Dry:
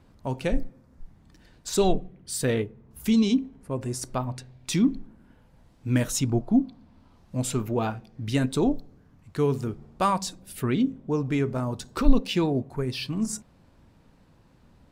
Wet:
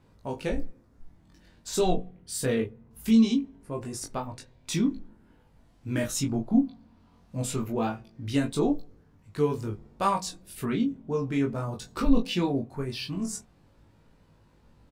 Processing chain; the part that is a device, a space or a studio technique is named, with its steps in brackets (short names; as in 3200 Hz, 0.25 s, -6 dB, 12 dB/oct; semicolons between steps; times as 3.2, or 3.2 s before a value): double-tracked vocal (doubler 18 ms -7 dB; chorus 0.21 Hz, delay 20 ms, depth 2.2 ms)